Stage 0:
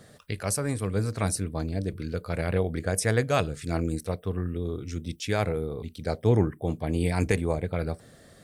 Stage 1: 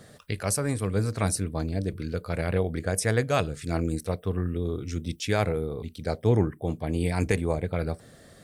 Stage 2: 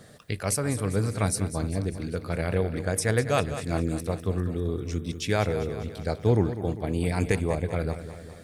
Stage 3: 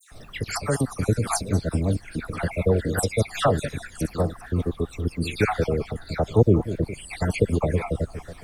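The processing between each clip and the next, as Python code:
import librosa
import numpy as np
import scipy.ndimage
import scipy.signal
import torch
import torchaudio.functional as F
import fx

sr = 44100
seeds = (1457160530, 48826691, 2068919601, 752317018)

y1 = fx.rider(x, sr, range_db=3, speed_s=2.0)
y2 = fx.echo_feedback(y1, sr, ms=199, feedback_pct=58, wet_db=-12)
y3 = fx.spec_dropout(y2, sr, seeds[0], share_pct=53)
y3 = fx.dmg_noise_colour(y3, sr, seeds[1], colour='brown', level_db=-51.0)
y3 = fx.dispersion(y3, sr, late='lows', ms=116.0, hz=2100.0)
y3 = y3 * 10.0 ** (6.0 / 20.0)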